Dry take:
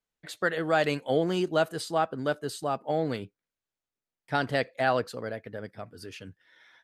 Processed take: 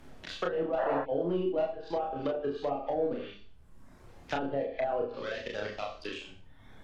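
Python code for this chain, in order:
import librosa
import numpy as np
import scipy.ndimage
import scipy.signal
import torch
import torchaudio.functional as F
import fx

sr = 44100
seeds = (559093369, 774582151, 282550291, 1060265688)

y = fx.bass_treble(x, sr, bass_db=-10, treble_db=-15)
y = fx.level_steps(y, sr, step_db=11)
y = fx.leveller(y, sr, passes=3)
y = fx.band_shelf(y, sr, hz=4200.0, db=14.0, octaves=1.7)
y = fx.dmg_noise_colour(y, sr, seeds[0], colour='brown', level_db=-51.0)
y = fx.hum_notches(y, sr, base_hz=50, count=9)
y = fx.dereverb_blind(y, sr, rt60_s=1.0)
y = fx.rev_schroeder(y, sr, rt60_s=0.4, comb_ms=29, drr_db=4.5)
y = fx.spec_paint(y, sr, seeds[1], shape='noise', start_s=0.78, length_s=0.24, low_hz=520.0, high_hz=2000.0, level_db=-18.0)
y = fx.env_lowpass_down(y, sr, base_hz=570.0, full_db=-21.5)
y = fx.room_early_taps(y, sr, ms=(29, 40), db=(-3.5, -6.0))
y = fx.band_squash(y, sr, depth_pct=40)
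y = y * librosa.db_to_amplitude(-6.0)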